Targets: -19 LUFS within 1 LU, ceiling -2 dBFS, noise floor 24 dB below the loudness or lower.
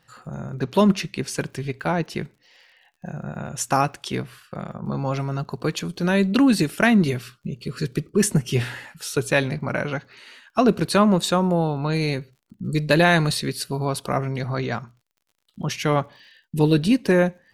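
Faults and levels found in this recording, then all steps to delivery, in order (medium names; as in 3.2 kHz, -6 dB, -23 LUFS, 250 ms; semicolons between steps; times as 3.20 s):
tick rate 54 per s; loudness -22.5 LUFS; peak level -3.5 dBFS; loudness target -19.0 LUFS
-> de-click; trim +3.5 dB; peak limiter -2 dBFS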